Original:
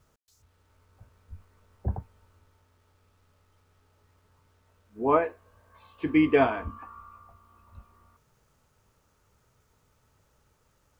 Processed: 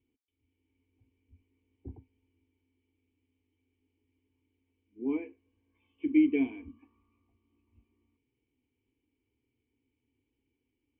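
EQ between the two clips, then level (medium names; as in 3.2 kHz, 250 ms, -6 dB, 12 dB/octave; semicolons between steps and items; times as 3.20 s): cascade formant filter i; high-pass 150 Hz 6 dB/octave; static phaser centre 900 Hz, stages 8; +5.5 dB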